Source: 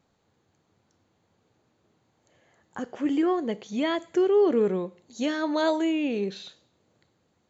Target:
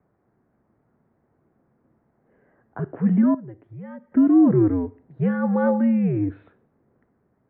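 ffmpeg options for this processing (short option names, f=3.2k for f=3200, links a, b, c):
-filter_complex "[0:a]lowshelf=f=430:g=10.5,asettb=1/sr,asplit=3[a][b][c];[a]atrim=end=3.344[d];[b]atrim=start=3.34:end=4.12,asetpts=PTS-STARTPTS,afade=t=in:d=0.004:c=qsin,afade=t=out:st=0.776:d=0.004:c=qsin,acompressor=threshold=-38dB:ratio=4[e];[c]atrim=start=4.116[f];[d][e]acrossfade=d=0.004:c1=hsin:c2=qsin[g];[g][f]acrossfade=d=0.004:c1=qsin:c2=hsin,highpass=f=220:t=q:w=0.5412,highpass=f=220:t=q:w=1.307,lowpass=f=2k:t=q:w=0.5176,lowpass=f=2k:t=q:w=0.7071,lowpass=f=2k:t=q:w=1.932,afreqshift=-96"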